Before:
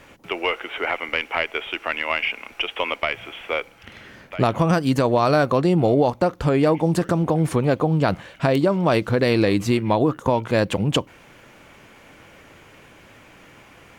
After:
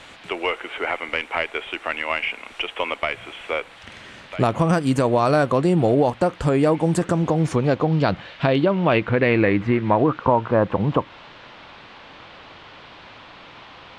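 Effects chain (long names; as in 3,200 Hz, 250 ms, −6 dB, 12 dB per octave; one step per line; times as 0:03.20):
low-pass filter sweep 8,400 Hz → 1,100 Hz, 0:06.95–0:10.62
noise in a band 540–3,600 Hz −46 dBFS
dynamic equaliser 4,900 Hz, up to −6 dB, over −40 dBFS, Q 0.89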